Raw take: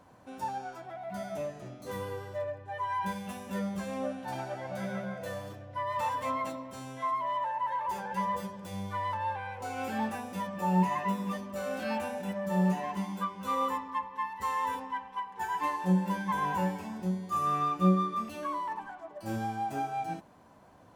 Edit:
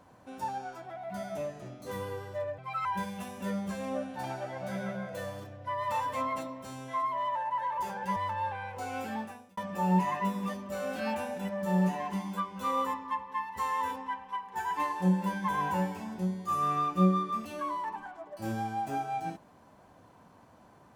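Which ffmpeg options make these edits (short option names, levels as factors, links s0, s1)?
-filter_complex "[0:a]asplit=5[s0][s1][s2][s3][s4];[s0]atrim=end=2.584[s5];[s1]atrim=start=2.58:end=2.94,asetpts=PTS-STARTPTS,asetrate=58212,aresample=44100,atrim=end_sample=12027,asetpts=PTS-STARTPTS[s6];[s2]atrim=start=2.936:end=8.252[s7];[s3]atrim=start=8.998:end=10.41,asetpts=PTS-STARTPTS,afade=t=out:st=0.752:d=0.66[s8];[s4]atrim=start=10.41,asetpts=PTS-STARTPTS,afade=t=in:d=0.004:c=hsin[s9];[s5][s6]acrossfade=d=0.004:c1=hsin:c2=hsin[s10];[s10][s7]acrossfade=d=0.004:c1=hsin:c2=hsin[s11];[s8][s9]concat=n=2:v=0:a=1[s12];[s11][s12]acrossfade=d=0.004:c1=hsin:c2=hsin"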